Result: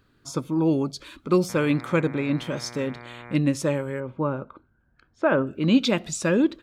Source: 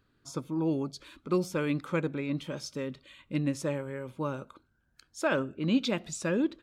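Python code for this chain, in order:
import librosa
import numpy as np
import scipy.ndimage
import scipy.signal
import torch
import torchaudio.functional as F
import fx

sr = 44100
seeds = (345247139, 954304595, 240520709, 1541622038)

y = fx.dmg_buzz(x, sr, base_hz=120.0, harmonics=20, level_db=-50.0, tilt_db=-2, odd_only=False, at=(1.48, 3.34), fade=0.02)
y = fx.lowpass(y, sr, hz=1600.0, slope=12, at=(4.0, 5.47))
y = F.gain(torch.from_numpy(y), 7.5).numpy()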